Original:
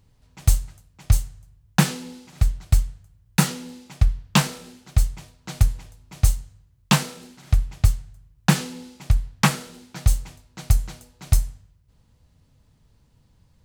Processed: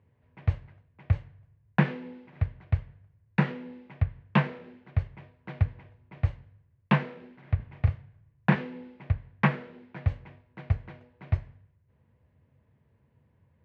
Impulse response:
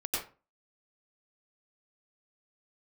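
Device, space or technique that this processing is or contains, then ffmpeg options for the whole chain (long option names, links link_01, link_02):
bass cabinet: -filter_complex "[0:a]asettb=1/sr,asplit=3[link_01][link_02][link_03];[link_01]atrim=end=7.564[link_04];[link_02]atrim=start=7.56:end=8.55,asetpts=PTS-STARTPTS,afade=type=in:duration=0.004:curve=qsin,afade=type=out:start_time=0.986:duration=0.004:curve=qsin,asplit=2[link_05][link_06];[link_06]adelay=37,volume=-5.5dB[link_07];[link_05][link_07]amix=inputs=2:normalize=0,atrim=end_sample=43659[link_08];[link_03]atrim=start=8.546[link_09];[link_04][link_08]acrossfade=duration=0.004:curve1=hsin:curve2=qsin[link_10];[link_10][link_09]acrossfade=duration=0.004:curve1=qsin:curve2=hsin,highpass=frequency=86:width=0.5412,highpass=frequency=86:width=1.3066,equalizer=frequency=110:width_type=q:width=4:gain=-4,equalizer=frequency=170:width_type=q:width=4:gain=-7,equalizer=frequency=280:width_type=q:width=4:gain=-6,equalizer=frequency=800:width_type=q:width=4:gain=-6,equalizer=frequency=1300:width_type=q:width=4:gain=-9,lowpass=frequency=2100:width=0.5412,lowpass=frequency=2100:width=1.3066"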